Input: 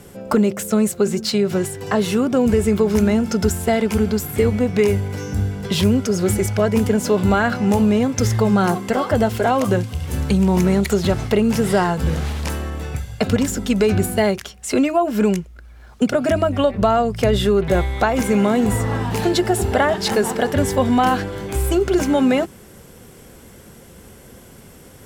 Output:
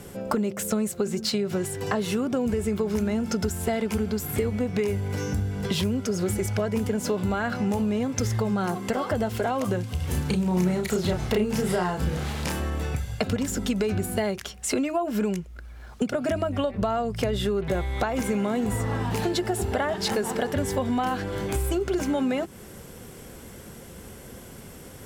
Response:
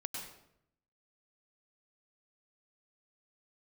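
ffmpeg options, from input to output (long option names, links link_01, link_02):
-filter_complex "[0:a]acompressor=threshold=-24dB:ratio=4,asettb=1/sr,asplit=3[link_01][link_02][link_03];[link_01]atrim=end=10.064[link_04];[link_02]atrim=start=10.06:end=12.6,asetpts=PTS-STARTPTS,afade=type=in:duration=0.004:curve=qsin,afade=type=out:start_time=2.536:duration=0.004:curve=qsin,asplit=2[link_05][link_06];[link_06]adelay=33,volume=-4dB[link_07];[link_05][link_07]amix=inputs=2:normalize=0,atrim=end_sample=112014[link_08];[link_03]atrim=start=12.596[link_09];[link_04][link_08]acrossfade=duration=0.004:curve1=hsin:curve2=qsin[link_10];[link_10][link_09]acrossfade=duration=0.004:curve1=qsin:curve2=hsin"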